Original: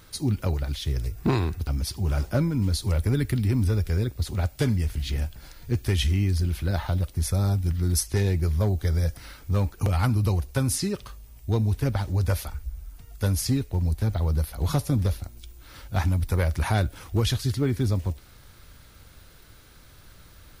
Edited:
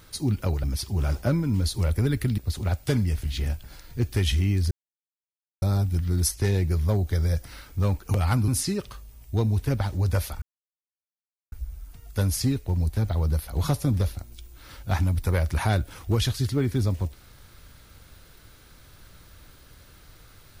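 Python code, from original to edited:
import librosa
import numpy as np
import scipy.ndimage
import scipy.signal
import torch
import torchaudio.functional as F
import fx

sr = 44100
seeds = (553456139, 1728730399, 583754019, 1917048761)

y = fx.edit(x, sr, fx.cut(start_s=0.64, length_s=1.08),
    fx.cut(start_s=3.46, length_s=0.64),
    fx.silence(start_s=6.43, length_s=0.91),
    fx.cut(start_s=10.2, length_s=0.43),
    fx.insert_silence(at_s=12.57, length_s=1.1), tone=tone)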